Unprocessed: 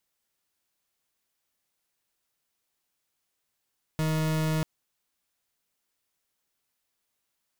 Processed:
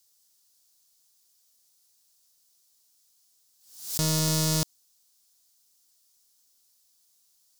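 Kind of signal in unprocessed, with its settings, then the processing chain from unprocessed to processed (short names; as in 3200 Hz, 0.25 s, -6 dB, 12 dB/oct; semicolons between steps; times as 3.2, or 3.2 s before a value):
pulse 157 Hz, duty 40% -26.5 dBFS 0.64 s
resonant high shelf 3400 Hz +13.5 dB, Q 1.5; backwards sustainer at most 98 dB/s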